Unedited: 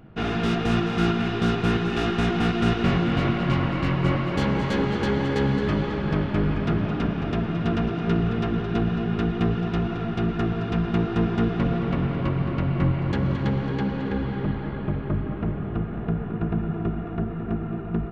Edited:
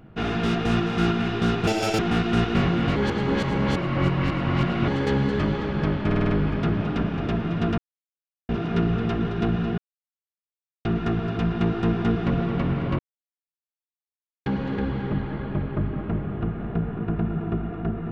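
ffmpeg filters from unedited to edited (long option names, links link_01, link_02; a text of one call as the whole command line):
ffmpeg -i in.wav -filter_complex "[0:a]asplit=15[link_01][link_02][link_03][link_04][link_05][link_06][link_07][link_08][link_09][link_10][link_11][link_12][link_13][link_14][link_15];[link_01]atrim=end=1.674[link_16];[link_02]atrim=start=1.67:end=2.28,asetpts=PTS-STARTPTS,asetrate=84231,aresample=44100,atrim=end_sample=14084,asetpts=PTS-STARTPTS[link_17];[link_03]atrim=start=2.276:end=3.252[link_18];[link_04]atrim=start=3.248:end=5.172,asetpts=PTS-STARTPTS,areverse[link_19];[link_05]atrim=start=5.168:end=6.402[link_20];[link_06]atrim=start=6.348:end=6.402[link_21];[link_07]atrim=start=6.348:end=6.402[link_22];[link_08]atrim=start=6.348:end=6.402[link_23];[link_09]atrim=start=6.348:end=6.402[link_24];[link_10]atrim=start=6.348:end=7.82,asetpts=PTS-STARTPTS,afade=type=out:start_time=1.468:duration=0.004:curve=hsin,apad=pad_dur=0.71[link_25];[link_11]atrim=start=7.82:end=9.11,asetpts=PTS-STARTPTS,afade=type=in:duration=0.004:curve=hsin,afade=type=out:start_time=1.286:duration=0.004:curve=hsin[link_26];[link_12]atrim=start=9.11:end=10.18,asetpts=PTS-STARTPTS,volume=0[link_27];[link_13]atrim=start=10.18:end=12.32,asetpts=PTS-STARTPTS,afade=type=in:duration=0.004:curve=hsin,afade=type=out:start_time=2.136:duration=0.004:curve=hsin[link_28];[link_14]atrim=start=12.32:end=13.79,asetpts=PTS-STARTPTS,volume=0[link_29];[link_15]atrim=start=13.79,asetpts=PTS-STARTPTS,afade=type=in:duration=0.004:curve=hsin[link_30];[link_16][link_17]acrossfade=duration=0.004:curve1=hsin:curve2=hsin[link_31];[link_31][link_18]acrossfade=duration=0.004:curve1=hsin:curve2=hsin[link_32];[link_32][link_19]acrossfade=duration=0.004:curve1=hsin:curve2=hsin[link_33];[link_33][link_20]acrossfade=duration=0.004:curve1=hsin:curve2=hsin[link_34];[link_34][link_21]acrossfade=duration=0.004:curve1=hsin:curve2=hsin[link_35];[link_35][link_22]acrossfade=duration=0.004:curve1=hsin:curve2=hsin[link_36];[link_36][link_23]acrossfade=duration=0.004:curve1=hsin:curve2=hsin[link_37];[link_37][link_24]acrossfade=duration=0.004:curve1=hsin:curve2=hsin[link_38];[link_25][link_26][link_27][link_28][link_29][link_30]concat=n=6:v=0:a=1[link_39];[link_38][link_39]acrossfade=duration=0.004:curve1=hsin:curve2=hsin" out.wav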